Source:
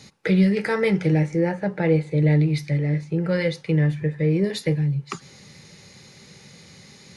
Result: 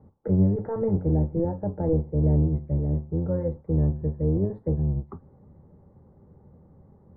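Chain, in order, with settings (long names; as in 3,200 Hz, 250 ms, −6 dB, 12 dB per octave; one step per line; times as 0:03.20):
sub-octave generator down 1 octave, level −1 dB
inverse Chebyshev low-pass filter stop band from 2,500 Hz, stop band 50 dB
level −5 dB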